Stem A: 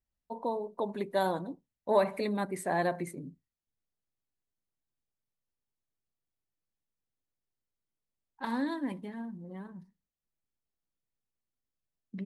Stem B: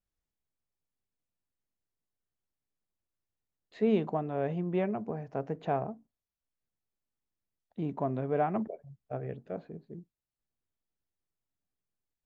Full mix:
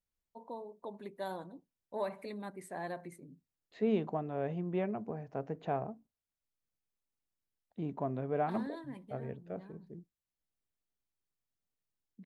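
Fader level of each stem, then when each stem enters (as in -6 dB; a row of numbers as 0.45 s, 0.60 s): -11.0 dB, -4.0 dB; 0.05 s, 0.00 s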